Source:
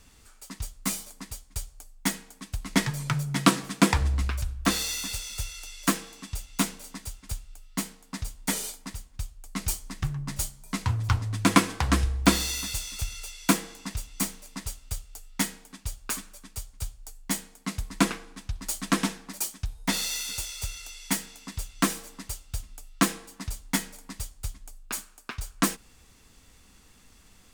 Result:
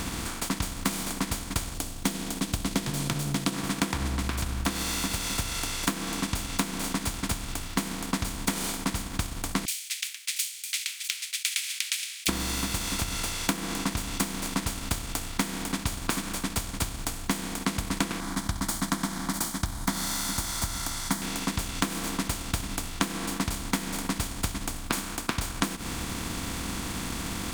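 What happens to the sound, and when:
0:01.74–0:03.54: flat-topped bell 1,400 Hz −10.5 dB
0:09.65–0:12.29: Butterworth high-pass 2,300 Hz 72 dB per octave
0:18.20–0:21.22: phaser with its sweep stopped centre 1,100 Hz, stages 4
whole clip: compressor on every frequency bin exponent 0.4; downward compressor 6 to 1, threshold −24 dBFS; transient designer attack +3 dB, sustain −6 dB; level −2 dB

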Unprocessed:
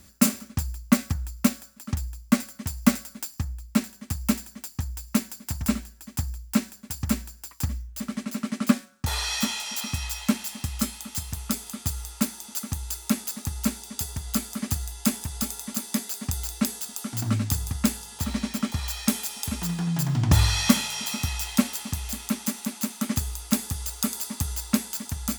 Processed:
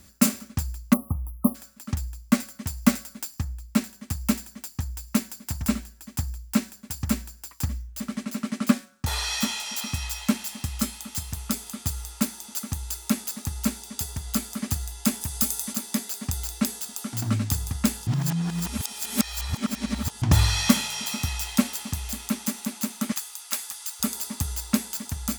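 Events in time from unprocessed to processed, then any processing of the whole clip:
0:00.94–0:01.55: time-frequency box erased 1,300–9,600 Hz
0:15.20–0:15.72: high-shelf EQ 8,700 Hz → 4,400 Hz +8.5 dB
0:18.07–0:20.22: reverse
0:23.12–0:24.00: high-pass filter 1,000 Hz

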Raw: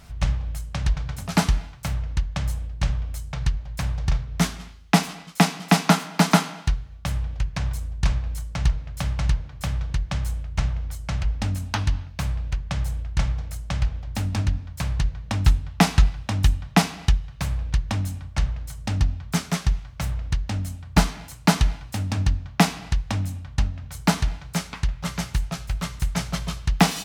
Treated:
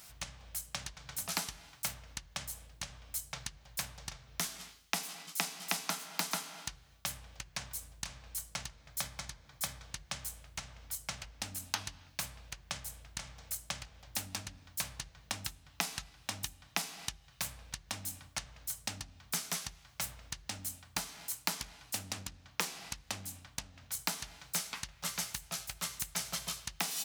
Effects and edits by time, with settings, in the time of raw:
0:08.81–0:09.84: notch filter 2,800 Hz, Q 10
0:21.50–0:23.99: highs frequency-modulated by the lows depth 0.75 ms
whole clip: hum removal 73.31 Hz, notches 11; downward compressor 6 to 1, threshold −26 dBFS; RIAA equalisation recording; level −7.5 dB

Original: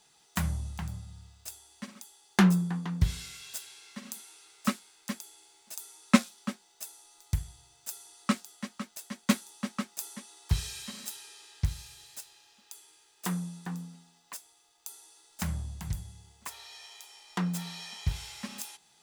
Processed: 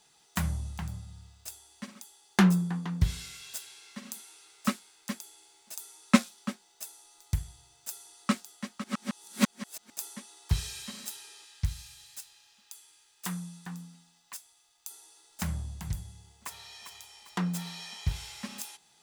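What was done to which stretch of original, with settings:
0:08.84–0:09.90: reverse
0:11.44–0:14.91: parametric band 400 Hz −9 dB 2.1 octaves
0:16.11–0:16.58: delay throw 400 ms, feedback 40%, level −8.5 dB

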